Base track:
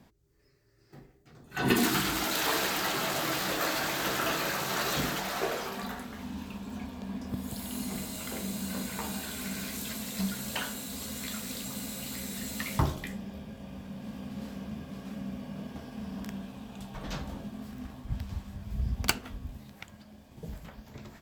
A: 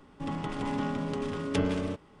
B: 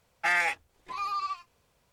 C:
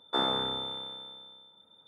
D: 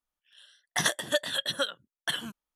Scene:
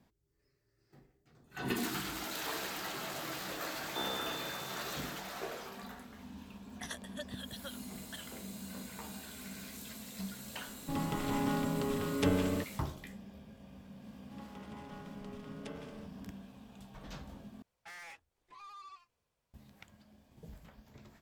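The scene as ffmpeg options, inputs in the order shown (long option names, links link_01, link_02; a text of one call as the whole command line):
ffmpeg -i bed.wav -i cue0.wav -i cue1.wav -i cue2.wav -i cue3.wav -filter_complex "[1:a]asplit=2[link_01][link_02];[0:a]volume=-10dB[link_03];[link_02]acrossover=split=270[link_04][link_05];[link_04]adelay=600[link_06];[link_06][link_05]amix=inputs=2:normalize=0[link_07];[2:a]asoftclip=type=tanh:threshold=-32.5dB[link_08];[link_03]asplit=2[link_09][link_10];[link_09]atrim=end=17.624[link_11];[link_08]atrim=end=1.92,asetpts=PTS-STARTPTS,volume=-15dB[link_12];[link_10]atrim=start=19.536[link_13];[3:a]atrim=end=1.87,asetpts=PTS-STARTPTS,volume=-10.5dB,afade=type=in:duration=0.004:curve=hsin,afade=type=out:start_time=1.866:duration=0.004:curve=hsin,adelay=3820[link_14];[4:a]atrim=end=2.55,asetpts=PTS-STARTPTS,volume=-17.5dB,afade=type=in:duration=0.004:curve=hsin,afade=type=out:start_time=2.546:duration=0.004:curve=hsin,adelay=6050[link_15];[link_01]atrim=end=2.2,asetpts=PTS-STARTPTS,volume=-1.5dB,afade=type=in:duration=0.004:curve=hsin,afade=type=out:start_time=2.196:duration=0.004:curve=hsin,adelay=10680[link_16];[link_07]atrim=end=2.2,asetpts=PTS-STARTPTS,volume=-15.5dB,afade=type=in:duration=0.004:curve=hsin,afade=type=out:start_time=2.196:duration=0.004:curve=hsin,adelay=14110[link_17];[link_11][link_12]acrossfade=duration=0.004:curve1=hsin:curve2=hsin[link_18];[link_18][link_13]acrossfade=duration=0.004:curve1=hsin:curve2=hsin[link_19];[link_19][link_14][link_15][link_16][link_17]amix=inputs=5:normalize=0" out.wav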